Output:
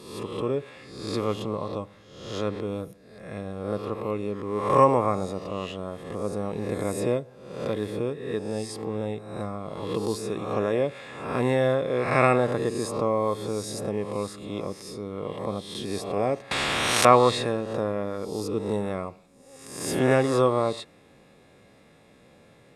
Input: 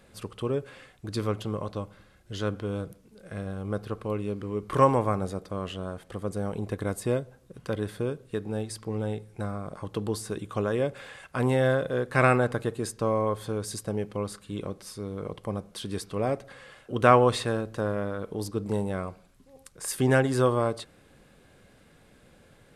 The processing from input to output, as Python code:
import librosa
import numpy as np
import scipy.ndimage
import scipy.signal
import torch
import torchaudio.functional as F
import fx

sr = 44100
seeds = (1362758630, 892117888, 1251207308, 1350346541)

y = fx.spec_swells(x, sr, rise_s=0.82)
y = fx.high_shelf(y, sr, hz=10000.0, db=-10.5)
y = fx.notch_comb(y, sr, f0_hz=1500.0)
y = fx.spectral_comp(y, sr, ratio=10.0, at=(16.51, 17.05))
y = y * 10.0 ** (1.5 / 20.0)